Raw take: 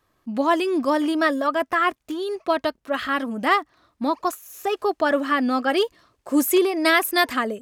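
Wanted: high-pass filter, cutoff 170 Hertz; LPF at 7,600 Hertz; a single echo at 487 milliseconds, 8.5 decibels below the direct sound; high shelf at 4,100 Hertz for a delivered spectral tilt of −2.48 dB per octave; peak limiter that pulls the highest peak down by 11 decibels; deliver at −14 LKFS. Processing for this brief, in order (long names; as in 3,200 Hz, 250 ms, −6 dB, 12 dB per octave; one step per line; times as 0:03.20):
high-pass filter 170 Hz
low-pass filter 7,600 Hz
high-shelf EQ 4,100 Hz +7 dB
brickwall limiter −13.5 dBFS
single-tap delay 487 ms −8.5 dB
level +10 dB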